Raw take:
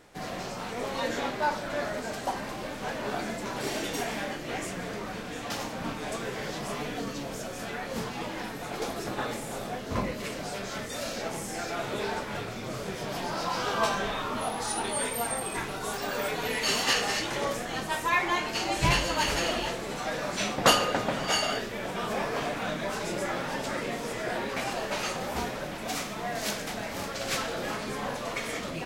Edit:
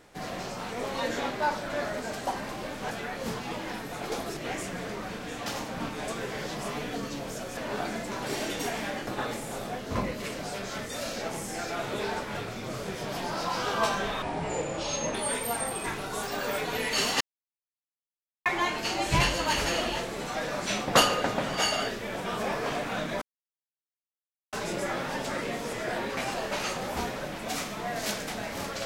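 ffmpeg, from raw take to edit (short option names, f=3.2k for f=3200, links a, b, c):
-filter_complex "[0:a]asplit=10[a][b][c][d][e][f][g][h][i][j];[a]atrim=end=2.912[k];[b]atrim=start=7.608:end=9.072[l];[c]atrim=start=4.408:end=7.612[m];[d]atrim=start=2.908:end=4.412[n];[e]atrim=start=9.068:end=14.224[o];[f]atrim=start=14.22:end=14.85,asetpts=PTS-STARTPTS,asetrate=29988,aresample=44100,atrim=end_sample=40857,asetpts=PTS-STARTPTS[p];[g]atrim=start=14.846:end=16.91,asetpts=PTS-STARTPTS,afade=t=out:st=2.06:d=0.004:c=hsin[q];[h]atrim=start=16.91:end=18.16,asetpts=PTS-STARTPTS,volume=0[r];[i]atrim=start=18.16:end=22.92,asetpts=PTS-STARTPTS,afade=t=in:d=0.004:c=hsin,afade=t=out:st=4.756:d=0.004:c=hsin,apad=pad_dur=1.31[s];[j]atrim=start=22.92,asetpts=PTS-STARTPTS,afade=t=in:d=0.004:c=hsin[t];[k][l]acrossfade=d=0.004:c1=hsin:c2=hsin[u];[u][m]acrossfade=d=0.004:c1=hsin:c2=hsin[v];[v][n]acrossfade=d=0.004:c1=hsin:c2=hsin[w];[w][o]acrossfade=d=0.004:c1=hsin:c2=hsin[x];[x][p]acrossfade=d=0.004:c1=hsin:c2=hsin[y];[q][r][s][t]concat=n=4:v=0:a=1[z];[y][z]acrossfade=d=0.004:c1=hsin:c2=hsin"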